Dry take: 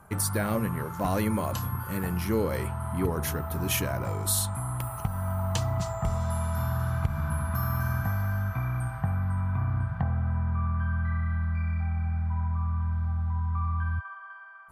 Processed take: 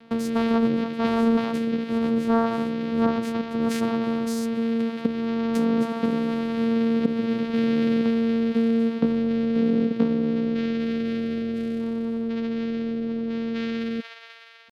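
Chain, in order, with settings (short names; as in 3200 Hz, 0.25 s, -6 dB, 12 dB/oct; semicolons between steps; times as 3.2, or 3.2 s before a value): vocoder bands 4, saw 140 Hz; pitch shift +8.5 st; gain +8 dB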